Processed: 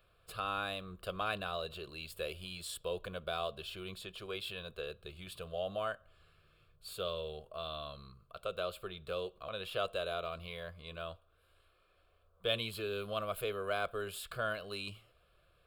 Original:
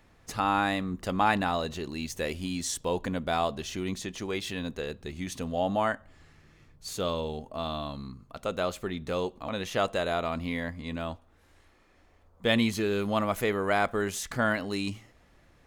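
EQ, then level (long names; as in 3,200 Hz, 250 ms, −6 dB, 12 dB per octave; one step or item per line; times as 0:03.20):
dynamic equaliser 1,200 Hz, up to −4 dB, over −35 dBFS, Q 0.78
low-shelf EQ 460 Hz −6 dB
phaser with its sweep stopped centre 1,300 Hz, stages 8
−3.0 dB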